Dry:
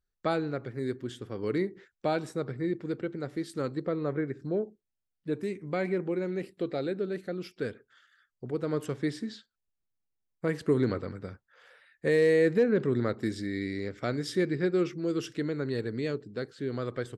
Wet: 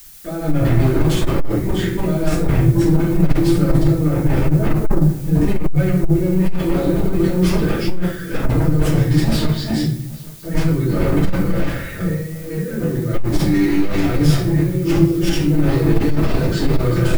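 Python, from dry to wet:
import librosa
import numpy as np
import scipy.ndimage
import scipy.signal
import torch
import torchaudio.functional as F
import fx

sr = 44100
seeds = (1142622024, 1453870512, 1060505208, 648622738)

p1 = fx.reverse_delay(x, sr, ms=364, wet_db=-9.0)
p2 = fx.level_steps(p1, sr, step_db=14)
p3 = p1 + F.gain(torch.from_numpy(p2), 1.0).numpy()
p4 = fx.highpass(p3, sr, hz=160.0, slope=6)
p5 = p4 + 0.78 * np.pad(p4, (int(5.9 * sr / 1000.0), 0))[:len(p4)]
p6 = fx.over_compress(p5, sr, threshold_db=-35.0, ratio=-1.0)
p7 = fx.fold_sine(p6, sr, drive_db=13, ceiling_db=-16.5)
p8 = fx.bass_treble(p7, sr, bass_db=13, treble_db=-1)
p9 = fx.room_shoebox(p8, sr, seeds[0], volume_m3=72.0, walls='mixed', distance_m=2.7)
p10 = fx.dmg_noise_colour(p9, sr, seeds[1], colour='blue', level_db=-27.0)
p11 = p10 + fx.echo_single(p10, sr, ms=820, db=-22.5, dry=0)
p12 = fx.transformer_sat(p11, sr, knee_hz=44.0)
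y = F.gain(torch.from_numpy(p12), -14.5).numpy()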